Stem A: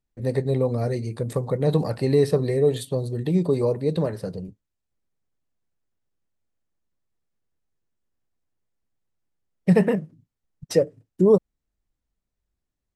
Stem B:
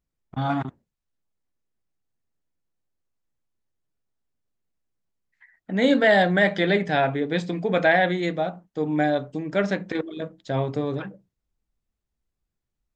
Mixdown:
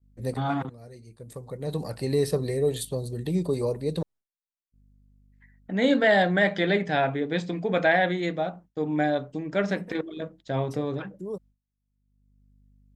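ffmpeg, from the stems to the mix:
-filter_complex "[0:a]highshelf=f=4400:g=10.5,aeval=exprs='val(0)+0.00501*(sin(2*PI*50*n/s)+sin(2*PI*2*50*n/s)/2+sin(2*PI*3*50*n/s)/3+sin(2*PI*4*50*n/s)/4+sin(2*PI*5*50*n/s)/5)':c=same,volume=0.562,asplit=3[s0][s1][s2];[s0]atrim=end=4.03,asetpts=PTS-STARTPTS,afade=t=out:st=4.026:d=0.004:c=hsin[s3];[s1]atrim=start=4.03:end=4.72,asetpts=PTS-STARTPTS,volume=0[s4];[s2]atrim=start=4.72,asetpts=PTS-STARTPTS,afade=t=in:d=0.004:c=hsin[s5];[s3][s4][s5]concat=n=3:v=0:a=1[s6];[1:a]volume=0.75,asplit=2[s7][s8];[s8]apad=whole_len=571266[s9];[s6][s9]sidechaincompress=threshold=0.00708:ratio=6:attack=9.8:release=1110[s10];[s10][s7]amix=inputs=2:normalize=0,agate=range=0.0224:threshold=0.00501:ratio=3:detection=peak"

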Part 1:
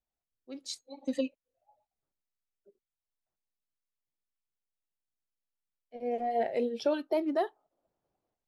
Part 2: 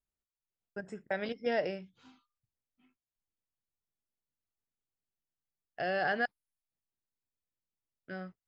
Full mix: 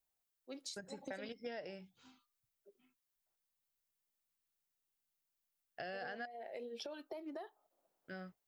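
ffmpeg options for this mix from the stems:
-filter_complex "[0:a]highpass=f=550:p=1,alimiter=level_in=2:limit=0.0631:level=0:latency=1:release=393,volume=0.501,acompressor=threshold=0.00708:ratio=6,volume=1.26[s0];[1:a]aemphasis=mode=production:type=50kf,volume=0.531[s1];[s0][s1]amix=inputs=2:normalize=0,acompressor=threshold=0.00794:ratio=6"

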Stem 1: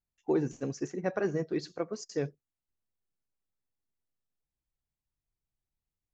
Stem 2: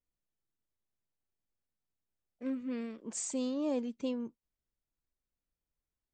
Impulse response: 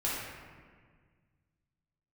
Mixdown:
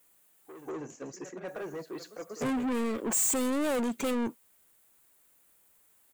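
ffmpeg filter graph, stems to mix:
-filter_complex "[0:a]asoftclip=type=tanh:threshold=0.0335,adelay=200,volume=0.335,asplit=2[s0][s1];[s1]volume=0.126[s2];[1:a]volume=0.631,asplit=3[s3][s4][s5];[s3]atrim=end=0.7,asetpts=PTS-STARTPTS,afade=t=out:st=0.696:d=0.004:c=hsin[s6];[s4]atrim=start=0.7:end=1.48,asetpts=PTS-STARTPTS,volume=0[s7];[s5]atrim=start=1.48,asetpts=PTS-STARTPTS,afade=t=in:d=0.004:c=hsin[s8];[s6][s7][s8]concat=n=3:v=0:a=1,asplit=2[s9][s10];[s10]apad=whole_len=279445[s11];[s0][s11]sidechaingate=range=0.0316:threshold=0.00224:ratio=16:detection=peak[s12];[s2]aecho=0:1:191:1[s13];[s12][s9][s13]amix=inputs=3:normalize=0,asplit=2[s14][s15];[s15]highpass=f=720:p=1,volume=70.8,asoftclip=type=tanh:threshold=0.075[s16];[s14][s16]amix=inputs=2:normalize=0,lowpass=f=2700:p=1,volume=0.501,aexciter=amount=7.4:drive=3.7:freq=7500"

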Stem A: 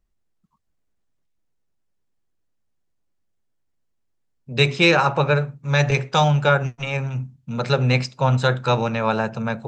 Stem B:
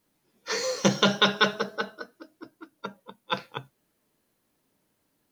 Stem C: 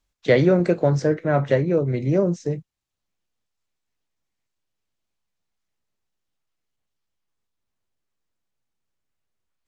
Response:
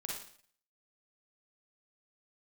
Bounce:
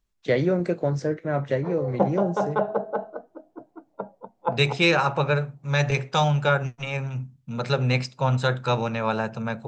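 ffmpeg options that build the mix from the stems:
-filter_complex "[0:a]volume=0.631[s0];[1:a]lowpass=f=740:t=q:w=4.9,adelay=1150,volume=1.12[s1];[2:a]volume=0.531,asplit=2[s2][s3];[s3]apad=whole_len=285084[s4];[s1][s4]sidechaincompress=threshold=0.0398:ratio=8:attack=16:release=482[s5];[s0][s5][s2]amix=inputs=3:normalize=0"

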